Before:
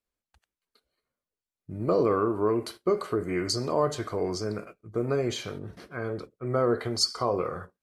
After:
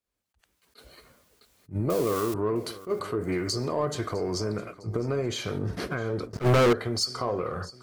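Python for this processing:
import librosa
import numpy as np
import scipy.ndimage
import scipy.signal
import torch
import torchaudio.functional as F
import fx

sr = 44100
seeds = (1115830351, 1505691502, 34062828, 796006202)

p1 = fx.crossing_spikes(x, sr, level_db=-21.5, at=(1.9, 2.34))
p2 = fx.recorder_agc(p1, sr, target_db=-18.0, rise_db_per_s=36.0, max_gain_db=30)
p3 = scipy.signal.sosfilt(scipy.signal.butter(2, 46.0, 'highpass', fs=sr, output='sos'), p2)
p4 = fx.low_shelf(p3, sr, hz=100.0, db=5.5)
p5 = p4 + fx.echo_feedback(p4, sr, ms=657, feedback_pct=44, wet_db=-19.5, dry=0)
p6 = fx.leveller(p5, sr, passes=5, at=(6.33, 6.73))
p7 = 10.0 ** (-25.0 / 20.0) * np.tanh(p6 / 10.0 ** (-25.0 / 20.0))
p8 = p6 + (p7 * librosa.db_to_amplitude(-5.5))
p9 = fx.attack_slew(p8, sr, db_per_s=310.0)
y = p9 * librosa.db_to_amplitude(-5.0)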